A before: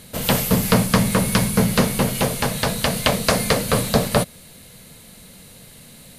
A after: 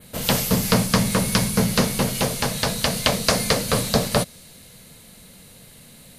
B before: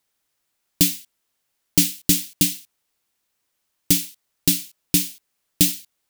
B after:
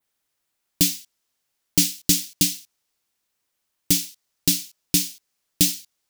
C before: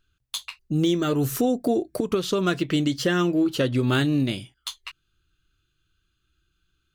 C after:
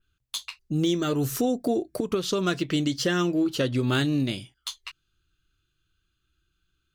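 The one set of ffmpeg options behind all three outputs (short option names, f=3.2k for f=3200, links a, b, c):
-af "adynamicequalizer=threshold=0.0112:dfrequency=5500:dqfactor=1.2:tfrequency=5500:tqfactor=1.2:attack=5:release=100:ratio=0.375:range=3:mode=boostabove:tftype=bell,volume=-2.5dB"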